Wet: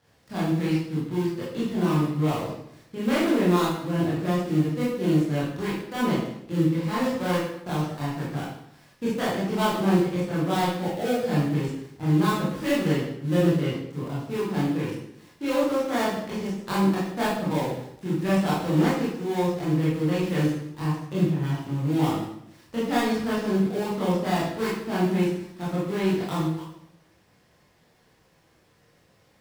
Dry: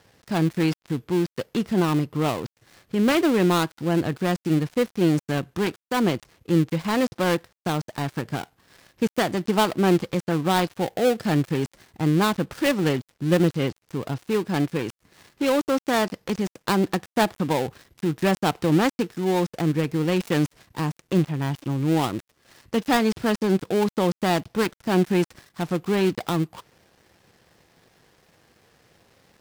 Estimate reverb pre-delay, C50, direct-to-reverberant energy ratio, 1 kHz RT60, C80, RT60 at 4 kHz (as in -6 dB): 20 ms, 1.0 dB, -9.0 dB, 0.70 s, 4.5 dB, 0.65 s